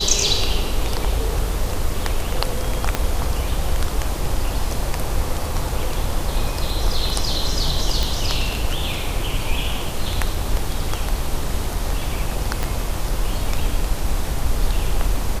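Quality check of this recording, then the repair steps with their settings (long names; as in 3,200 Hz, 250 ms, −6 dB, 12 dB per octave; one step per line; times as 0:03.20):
0:02.95: click −4 dBFS
0:08.03: click
0:12.63: click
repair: click removal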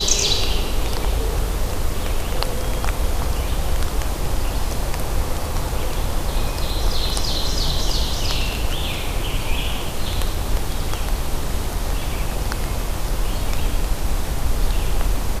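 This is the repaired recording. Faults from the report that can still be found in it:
0:02.95: click
0:12.63: click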